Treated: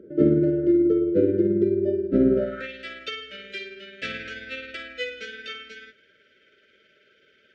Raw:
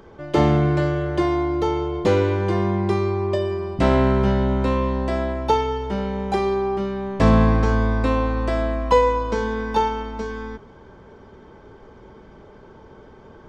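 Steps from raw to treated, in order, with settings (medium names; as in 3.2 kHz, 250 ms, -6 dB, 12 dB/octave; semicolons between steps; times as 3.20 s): band-pass sweep 310 Hz -> 2.7 kHz, 4.10–4.83 s; granular stretch 0.56×, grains 108 ms; brick-wall FIR band-stop 640–1300 Hz; trim +6.5 dB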